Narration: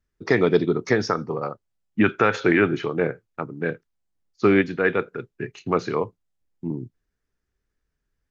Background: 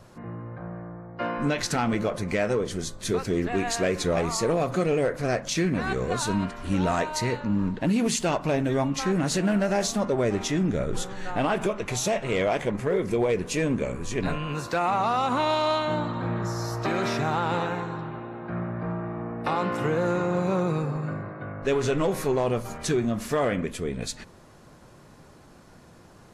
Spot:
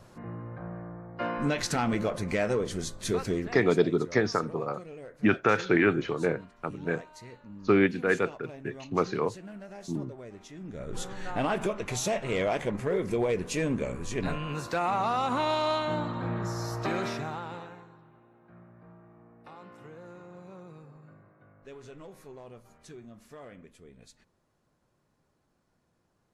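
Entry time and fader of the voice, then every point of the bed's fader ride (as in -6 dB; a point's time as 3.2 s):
3.25 s, -4.5 dB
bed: 3.31 s -2.5 dB
3.79 s -20.5 dB
10.55 s -20.5 dB
11.06 s -3.5 dB
16.94 s -3.5 dB
18 s -22.5 dB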